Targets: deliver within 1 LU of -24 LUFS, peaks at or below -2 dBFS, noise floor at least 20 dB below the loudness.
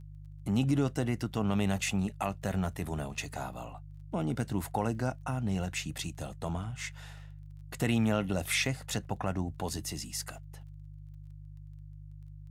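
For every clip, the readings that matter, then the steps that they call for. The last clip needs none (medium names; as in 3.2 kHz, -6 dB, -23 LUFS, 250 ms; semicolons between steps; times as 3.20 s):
tick rate 19 per s; hum 50 Hz; highest harmonic 150 Hz; hum level -44 dBFS; loudness -33.0 LUFS; peak level -15.0 dBFS; loudness target -24.0 LUFS
-> de-click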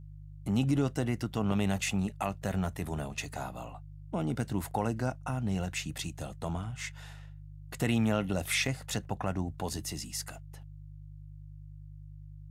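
tick rate 0 per s; hum 50 Hz; highest harmonic 150 Hz; hum level -44 dBFS
-> de-hum 50 Hz, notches 3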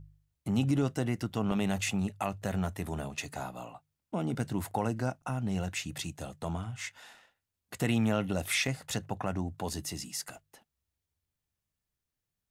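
hum not found; loudness -33.5 LUFS; peak level -15.5 dBFS; loudness target -24.0 LUFS
-> trim +9.5 dB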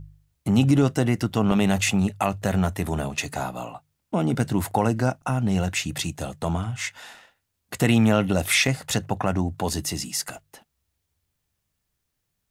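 loudness -24.0 LUFS; peak level -6.0 dBFS; noise floor -78 dBFS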